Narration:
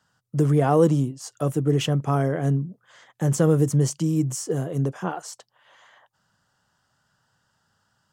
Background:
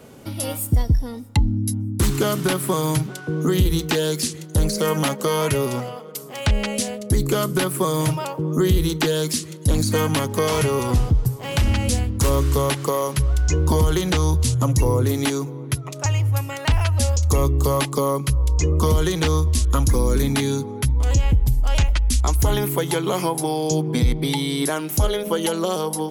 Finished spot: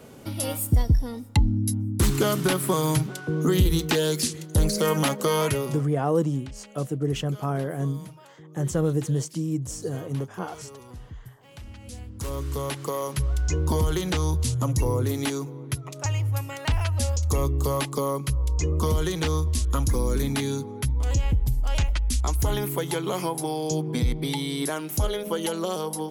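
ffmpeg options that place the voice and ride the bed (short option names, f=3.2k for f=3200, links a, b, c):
-filter_complex "[0:a]adelay=5350,volume=-5dB[a];[1:a]volume=16dB,afade=t=out:st=5.41:d=0.47:silence=0.0841395,afade=t=in:st=11.8:d=1.45:silence=0.125893[b];[a][b]amix=inputs=2:normalize=0"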